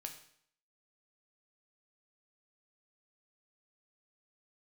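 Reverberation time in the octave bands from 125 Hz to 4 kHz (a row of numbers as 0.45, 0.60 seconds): 0.65, 0.65, 0.60, 0.65, 0.60, 0.60 seconds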